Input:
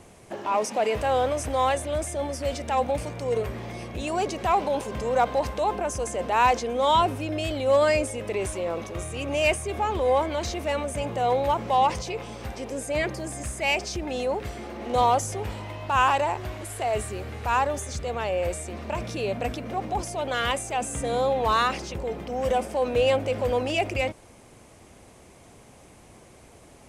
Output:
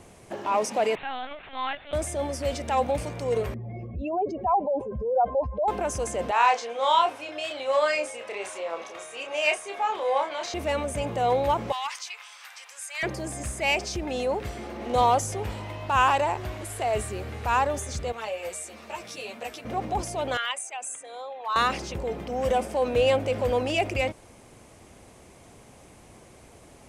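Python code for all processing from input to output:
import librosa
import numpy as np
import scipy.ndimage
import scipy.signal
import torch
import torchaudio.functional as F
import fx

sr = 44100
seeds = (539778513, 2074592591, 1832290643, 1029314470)

y = fx.chain(x, sr, fx.highpass(hz=1300.0, slope=12),
    fx.lpc_vocoder(seeds[0], excitation='pitch_kept', order=10), at=(0.95, 1.93))
y = fx.chain(y, sr, fx.spec_expand(power=2.4),
    fx.air_absorb(metres=56.0), at=(3.54, 5.68))
y = fx.chain(y, sr, fx.highpass(hz=670.0, slope=12),
    fx.air_absorb(metres=52.0),
    fx.doubler(ms=30.0, db=-5.0), at=(6.31, 10.54))
y = fx.chain(y, sr, fx.highpass(hz=1200.0, slope=24),
    fx.overload_stage(gain_db=23.0), at=(11.72, 13.03))
y = fx.chain(y, sr, fx.highpass(hz=710.0, slope=6),
    fx.high_shelf(hz=4700.0, db=5.5),
    fx.ensemble(), at=(18.12, 19.65))
y = fx.chain(y, sr, fx.envelope_sharpen(power=1.5),
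    fx.highpass(hz=1300.0, slope=12), at=(20.37, 21.56))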